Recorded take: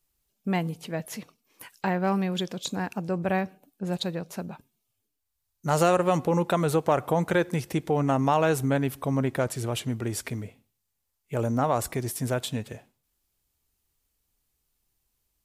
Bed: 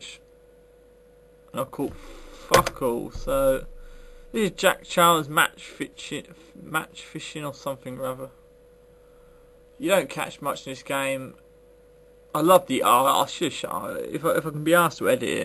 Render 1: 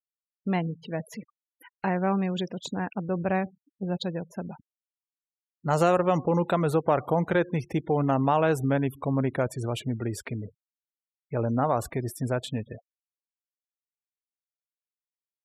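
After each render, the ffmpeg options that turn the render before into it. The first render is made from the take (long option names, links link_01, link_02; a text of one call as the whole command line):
ffmpeg -i in.wav -af "afftfilt=real='re*gte(hypot(re,im),0.0126)':imag='im*gte(hypot(re,im),0.0126)':win_size=1024:overlap=0.75,highshelf=frequency=4000:gain=-8" out.wav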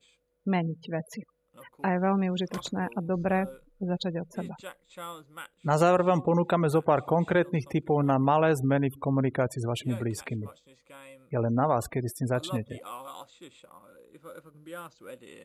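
ffmpeg -i in.wav -i bed.wav -filter_complex "[1:a]volume=-23dB[link_01];[0:a][link_01]amix=inputs=2:normalize=0" out.wav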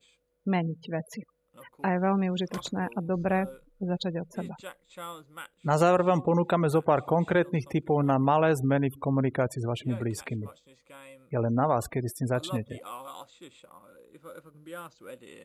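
ffmpeg -i in.wav -filter_complex "[0:a]asettb=1/sr,asplit=3[link_01][link_02][link_03];[link_01]atrim=end=9.554[link_04];[link_02]atrim=start=9.55:end=10.01,asetpts=PTS-STARTPTS,afade=type=in:duration=0.004:curve=qsin,afade=type=out:start_time=0.456:duration=0.004:curve=qsin,lowpass=frequency=2900:poles=1[link_05];[link_03]atrim=start=10.006[link_06];[link_04][link_05]acrossfade=duration=0.004:curve1=hsin:curve2=qsin[link_07];[link_07][link_06]acrossfade=duration=0.004:curve1=qsin:curve2=hsin" out.wav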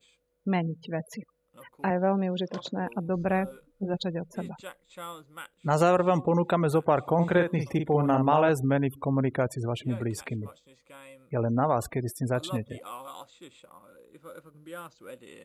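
ffmpeg -i in.wav -filter_complex "[0:a]asettb=1/sr,asplit=3[link_01][link_02][link_03];[link_01]atrim=end=1.904[link_04];[link_02]atrim=start=1.9:end=2.87,asetpts=PTS-STARTPTS,afade=type=in:duration=0.004:curve=qsin,afade=type=out:start_time=0.966:duration=0.004:curve=qsin,highpass=150,equalizer=frequency=570:width_type=q:width=4:gain=5,equalizer=frequency=1200:width_type=q:width=4:gain=-6,equalizer=frequency=2200:width_type=q:width=4:gain=-10,lowpass=frequency=5500:width=0.5412,lowpass=frequency=5500:width=1.3066[link_05];[link_03]atrim=start=2.866[link_06];[link_04][link_05]acrossfade=duration=0.004:curve1=hsin:curve2=qsin[link_07];[link_07][link_06]acrossfade=duration=0.004:curve1=qsin:curve2=hsin,asettb=1/sr,asplit=3[link_08][link_09][link_10];[link_08]atrim=end=3.494[link_11];[link_09]atrim=start=3.49:end=3.94,asetpts=PTS-STARTPTS,afade=type=in:duration=0.004:curve=qsin,afade=type=out:start_time=0.446:duration=0.004:curve=qsin,asplit=2[link_12][link_13];[link_13]adelay=20,volume=-4.5dB[link_14];[link_12][link_14]amix=inputs=2:normalize=0,atrim=end_sample=19845[link_15];[link_10]atrim=start=3.936[link_16];[link_11][link_15]acrossfade=duration=0.004:curve1=hsin:curve2=qsin[link_17];[link_17][link_16]acrossfade=duration=0.004:curve1=qsin:curve2=hsin,asettb=1/sr,asplit=3[link_18][link_19][link_20];[link_18]atrim=end=7.144[link_21];[link_19]atrim=start=7.14:end=8.49,asetpts=PTS-STARTPTS,afade=type=in:duration=0.004:curve=qsin,afade=type=out:start_time=1.346:duration=0.004:curve=qsin,asplit=2[link_22][link_23];[link_23]adelay=47,volume=-6dB[link_24];[link_22][link_24]amix=inputs=2:normalize=0,atrim=end_sample=59535[link_25];[link_20]atrim=start=8.486[link_26];[link_21][link_25]acrossfade=duration=0.004:curve1=hsin:curve2=qsin[link_27];[link_27][link_26]acrossfade=duration=0.004:curve1=qsin:curve2=hsin" out.wav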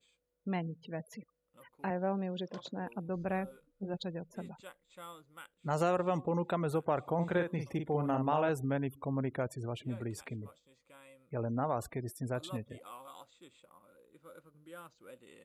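ffmpeg -i in.wav -af "volume=-8.5dB" out.wav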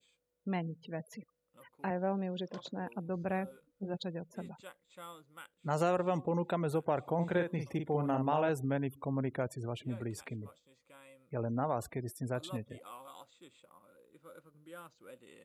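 ffmpeg -i in.wav -af "highpass=61,adynamicequalizer=threshold=0.00178:dfrequency=1200:dqfactor=4.4:tfrequency=1200:tqfactor=4.4:attack=5:release=100:ratio=0.375:range=2.5:mode=cutabove:tftype=bell" out.wav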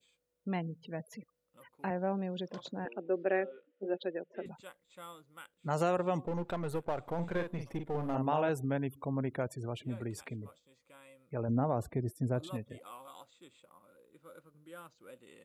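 ffmpeg -i in.wav -filter_complex "[0:a]asettb=1/sr,asplit=3[link_01][link_02][link_03];[link_01]atrim=end=2.854[link_04];[link_02]atrim=start=2.85:end=4.46,asetpts=PTS-STARTPTS,afade=type=in:duration=0.004:curve=qsin,afade=type=out:start_time=1.606:duration=0.004:curve=qsin,highpass=frequency=260:width=0.5412,highpass=frequency=260:width=1.3066,equalizer=frequency=380:width_type=q:width=4:gain=9,equalizer=frequency=570:width_type=q:width=4:gain=6,equalizer=frequency=1000:width_type=q:width=4:gain=-8,equalizer=frequency=1800:width_type=q:width=4:gain=8,equalizer=frequency=2900:width_type=q:width=4:gain=7,lowpass=frequency=3300:width=0.5412,lowpass=frequency=3300:width=1.3066[link_05];[link_03]atrim=start=4.456[link_06];[link_04][link_05]acrossfade=duration=0.004:curve1=hsin:curve2=qsin[link_07];[link_07][link_06]acrossfade=duration=0.004:curve1=qsin:curve2=hsin,asplit=3[link_08][link_09][link_10];[link_08]afade=type=out:start_time=6.25:duration=0.02[link_11];[link_09]aeval=exprs='if(lt(val(0),0),0.447*val(0),val(0))':channel_layout=same,afade=type=in:start_time=6.25:duration=0.02,afade=type=out:start_time=8.14:duration=0.02[link_12];[link_10]afade=type=in:start_time=8.14:duration=0.02[link_13];[link_11][link_12][link_13]amix=inputs=3:normalize=0,asettb=1/sr,asplit=3[link_14][link_15][link_16];[link_14]atrim=end=11.484[link_17];[link_15]atrim=start=11.48:end=12.47,asetpts=PTS-STARTPTS,afade=type=in:duration=0.004:curve=qsin,afade=type=out:start_time=0.986:duration=0.004:curve=qsin,tiltshelf=frequency=760:gain=6[link_18];[link_16]atrim=start=12.466[link_19];[link_17][link_18]acrossfade=duration=0.004:curve1=hsin:curve2=qsin[link_20];[link_20][link_19]acrossfade=duration=0.004:curve1=qsin:curve2=hsin" out.wav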